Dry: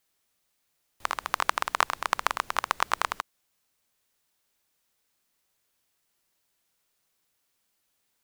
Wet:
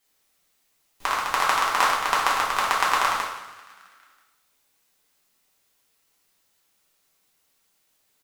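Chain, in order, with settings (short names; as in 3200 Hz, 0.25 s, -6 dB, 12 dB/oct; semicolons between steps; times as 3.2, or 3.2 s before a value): frequency-shifting echo 0.328 s, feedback 44%, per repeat +84 Hz, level -20.5 dB; two-slope reverb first 0.72 s, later 1.9 s, from -25 dB, DRR -5.5 dB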